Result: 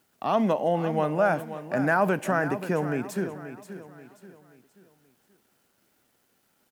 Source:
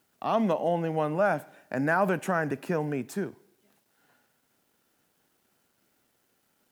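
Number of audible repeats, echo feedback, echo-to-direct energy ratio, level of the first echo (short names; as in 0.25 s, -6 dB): 3, 39%, -11.5 dB, -12.0 dB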